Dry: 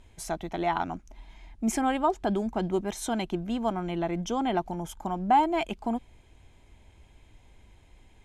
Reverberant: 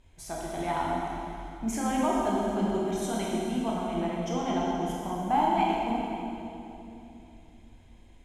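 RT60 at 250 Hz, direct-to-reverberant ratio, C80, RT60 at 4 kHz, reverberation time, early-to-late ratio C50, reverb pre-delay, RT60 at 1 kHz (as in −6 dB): 3.8 s, −4.5 dB, −1.0 dB, 2.6 s, 3.0 s, −2.5 dB, 18 ms, 2.8 s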